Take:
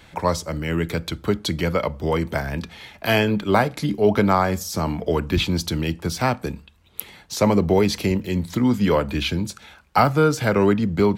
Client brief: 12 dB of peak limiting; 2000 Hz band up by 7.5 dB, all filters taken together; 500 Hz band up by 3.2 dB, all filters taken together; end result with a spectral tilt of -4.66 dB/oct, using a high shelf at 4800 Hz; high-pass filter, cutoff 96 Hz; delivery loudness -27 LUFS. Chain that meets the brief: HPF 96 Hz; bell 500 Hz +3.5 dB; bell 2000 Hz +8.5 dB; high shelf 4800 Hz +5.5 dB; gain -4.5 dB; limiter -15.5 dBFS

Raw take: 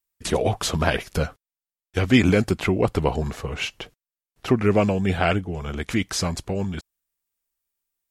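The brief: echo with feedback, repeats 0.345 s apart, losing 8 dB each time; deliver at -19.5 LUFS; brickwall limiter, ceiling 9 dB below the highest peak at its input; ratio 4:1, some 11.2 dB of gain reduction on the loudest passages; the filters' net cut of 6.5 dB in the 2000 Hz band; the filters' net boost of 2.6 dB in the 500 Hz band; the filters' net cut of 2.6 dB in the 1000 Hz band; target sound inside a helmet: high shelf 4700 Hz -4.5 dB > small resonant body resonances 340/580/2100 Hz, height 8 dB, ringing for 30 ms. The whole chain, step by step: bell 500 Hz +4.5 dB; bell 1000 Hz -4.5 dB; bell 2000 Hz -6.5 dB; compressor 4:1, threshold -26 dBFS; limiter -22.5 dBFS; high shelf 4700 Hz -4.5 dB; feedback echo 0.345 s, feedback 40%, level -8 dB; small resonant body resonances 340/580/2100 Hz, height 8 dB, ringing for 30 ms; gain +11 dB

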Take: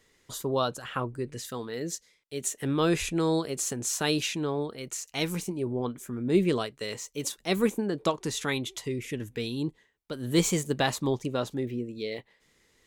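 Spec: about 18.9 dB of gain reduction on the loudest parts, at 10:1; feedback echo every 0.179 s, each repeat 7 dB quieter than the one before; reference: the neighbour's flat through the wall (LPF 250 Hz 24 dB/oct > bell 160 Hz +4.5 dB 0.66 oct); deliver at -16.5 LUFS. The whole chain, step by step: compressor 10:1, threshold -38 dBFS; LPF 250 Hz 24 dB/oct; bell 160 Hz +4.5 dB 0.66 oct; feedback echo 0.179 s, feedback 45%, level -7 dB; gain +29 dB

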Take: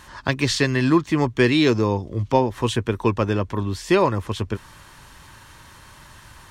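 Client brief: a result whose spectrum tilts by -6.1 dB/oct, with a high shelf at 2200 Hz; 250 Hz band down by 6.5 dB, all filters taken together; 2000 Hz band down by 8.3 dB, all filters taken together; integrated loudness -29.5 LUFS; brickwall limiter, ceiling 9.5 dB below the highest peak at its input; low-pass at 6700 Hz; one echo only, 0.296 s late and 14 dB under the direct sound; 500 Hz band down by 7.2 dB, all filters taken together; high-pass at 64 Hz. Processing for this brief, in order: HPF 64 Hz; LPF 6700 Hz; bell 250 Hz -6 dB; bell 500 Hz -6.5 dB; bell 2000 Hz -5 dB; high shelf 2200 Hz -9 dB; limiter -18.5 dBFS; echo 0.296 s -14 dB

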